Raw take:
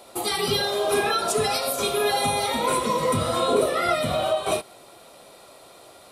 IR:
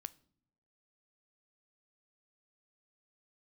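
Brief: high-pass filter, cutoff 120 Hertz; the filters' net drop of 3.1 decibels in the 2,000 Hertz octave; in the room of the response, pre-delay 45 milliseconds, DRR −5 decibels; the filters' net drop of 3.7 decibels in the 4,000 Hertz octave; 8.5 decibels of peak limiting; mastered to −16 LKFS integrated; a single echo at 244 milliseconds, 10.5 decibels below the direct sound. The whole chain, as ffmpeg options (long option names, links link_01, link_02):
-filter_complex "[0:a]highpass=120,equalizer=frequency=2000:width_type=o:gain=-3,equalizer=frequency=4000:width_type=o:gain=-3.5,alimiter=limit=-17.5dB:level=0:latency=1,aecho=1:1:244:0.299,asplit=2[link_01][link_02];[1:a]atrim=start_sample=2205,adelay=45[link_03];[link_02][link_03]afir=irnorm=-1:irlink=0,volume=9.5dB[link_04];[link_01][link_04]amix=inputs=2:normalize=0,volume=4dB"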